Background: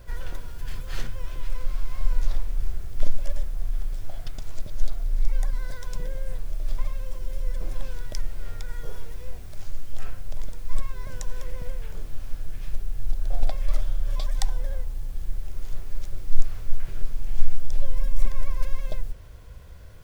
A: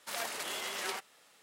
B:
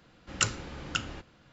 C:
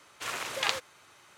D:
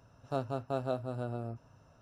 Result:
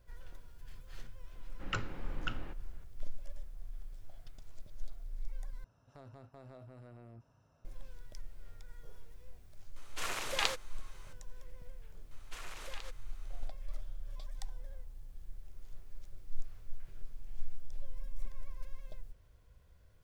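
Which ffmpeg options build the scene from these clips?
ffmpeg -i bed.wav -i cue0.wav -i cue1.wav -i cue2.wav -i cue3.wav -filter_complex "[3:a]asplit=2[link_01][link_02];[0:a]volume=-18dB[link_03];[2:a]lowpass=2300[link_04];[4:a]acompressor=threshold=-38dB:ratio=12:attack=0.3:release=29:knee=1:detection=peak[link_05];[link_01]equalizer=frequency=1700:width=0.55:gain=-2[link_06];[link_02]acompressor=threshold=-36dB:ratio=6:attack=3.2:release=140:knee=1:detection=peak[link_07];[link_03]asplit=2[link_08][link_09];[link_08]atrim=end=5.644[link_10];[link_05]atrim=end=2.01,asetpts=PTS-STARTPTS,volume=-8.5dB[link_11];[link_09]atrim=start=7.646[link_12];[link_04]atrim=end=1.52,asetpts=PTS-STARTPTS,volume=-5.5dB,afade=type=in:duration=0.004:curve=hsin,afade=type=out:start_time=1.516:duration=0.004:curve=hsin,adelay=1320[link_13];[link_06]atrim=end=1.37,asetpts=PTS-STARTPTS,volume=-2dB,afade=type=in:duration=0.004:curve=hsin,afade=type=out:start_time=1.366:duration=0.004:curve=hsin,adelay=9760[link_14];[link_07]atrim=end=1.37,asetpts=PTS-STARTPTS,volume=-8.5dB,afade=type=in:duration=0.004:curve=hsin,afade=type=out:start_time=1.366:duration=0.004:curve=hsin,adelay=12110[link_15];[link_10][link_11]acrossfade=duration=0.004:curve1=hsin:curve2=hsin[link_16];[link_16][link_12]acrossfade=duration=0.004:curve1=hsin:curve2=hsin[link_17];[link_17][link_13][link_14][link_15]amix=inputs=4:normalize=0" out.wav

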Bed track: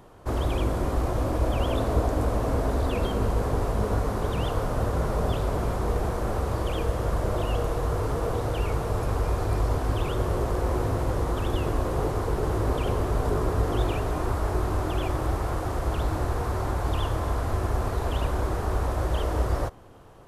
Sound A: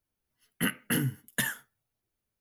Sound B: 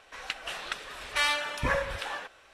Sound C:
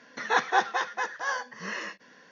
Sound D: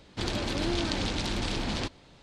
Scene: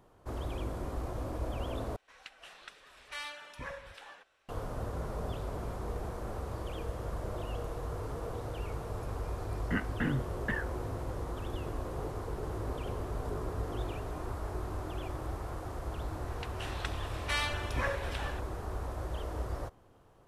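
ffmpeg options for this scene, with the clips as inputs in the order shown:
ffmpeg -i bed.wav -i cue0.wav -i cue1.wav -filter_complex "[2:a]asplit=2[link_01][link_02];[0:a]volume=-11.5dB[link_03];[1:a]lowpass=frequency=2100:width=0.5412,lowpass=frequency=2100:width=1.3066[link_04];[link_02]dynaudnorm=framelen=120:gausssize=7:maxgain=11.5dB[link_05];[link_03]asplit=2[link_06][link_07];[link_06]atrim=end=1.964[link_08];[link_01]atrim=end=2.53,asetpts=PTS-STARTPTS,volume=-15dB[link_09];[link_07]atrim=start=4.486[link_10];[link_04]atrim=end=2.4,asetpts=PTS-STARTPTS,volume=-2.5dB,afade=type=in:duration=0.004:curve=hsin,afade=type=out:start_time=2.396:duration=0.004:curve=hsin,adelay=9100[link_11];[link_05]atrim=end=2.53,asetpts=PTS-STARTPTS,volume=-16dB,afade=type=in:duration=0.004:curve=hsin,afade=type=out:start_time=2.526:duration=0.004:curve=hsin,adelay=16130[link_12];[link_08][link_09]acrossfade=duration=0.004:curve1=hsin:curve2=hsin[link_13];[link_13][link_10]acrossfade=duration=0.004:curve1=hsin:curve2=hsin[link_14];[link_14][link_11][link_12]amix=inputs=3:normalize=0" out.wav

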